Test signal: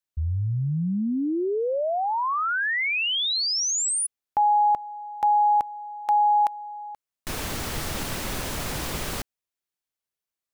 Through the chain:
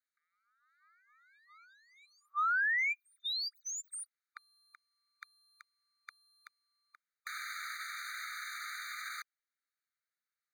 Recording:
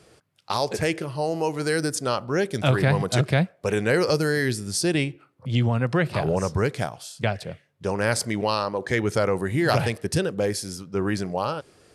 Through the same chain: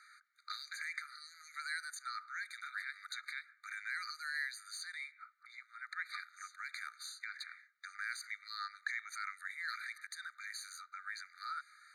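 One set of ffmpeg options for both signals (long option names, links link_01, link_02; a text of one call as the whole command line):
ffmpeg -i in.wav -filter_complex "[0:a]asplit=2[link_01][link_02];[link_02]aeval=exprs='sgn(val(0))*max(abs(val(0))-0.0141,0)':channel_layout=same,volume=-9dB[link_03];[link_01][link_03]amix=inputs=2:normalize=0,acrossover=split=280|1800[link_04][link_05][link_06];[link_05]acompressor=threshold=-31dB:ratio=4:attack=0.37:release=424:knee=2.83:detection=peak[link_07];[link_04][link_07][link_06]amix=inputs=3:normalize=0,alimiter=limit=-19dB:level=0:latency=1:release=26,acompressor=threshold=-33dB:ratio=4:attack=4:release=119:knee=1:detection=peak,asplit=2[link_08][link_09];[link_09]highpass=frequency=720:poles=1,volume=12dB,asoftclip=type=tanh:threshold=-19dB[link_10];[link_08][link_10]amix=inputs=2:normalize=0,lowpass=frequency=1200:poles=1,volume=-6dB,afftfilt=real='re*eq(mod(floor(b*sr/1024/1200),2),1)':imag='im*eq(mod(floor(b*sr/1024/1200),2),1)':win_size=1024:overlap=0.75,volume=1.5dB" out.wav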